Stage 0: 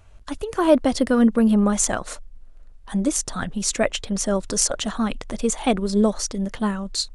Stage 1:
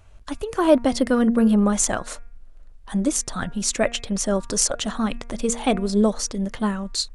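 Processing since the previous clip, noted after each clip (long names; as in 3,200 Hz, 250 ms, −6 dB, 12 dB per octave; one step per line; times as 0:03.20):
hum removal 235 Hz, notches 11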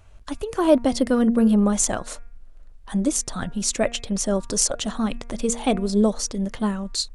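dynamic equaliser 1,600 Hz, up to −4 dB, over −39 dBFS, Q 0.92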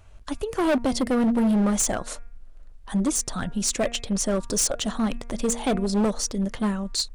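gain into a clipping stage and back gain 18 dB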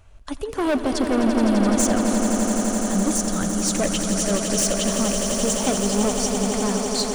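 echo that builds up and dies away 85 ms, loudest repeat 8, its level −9 dB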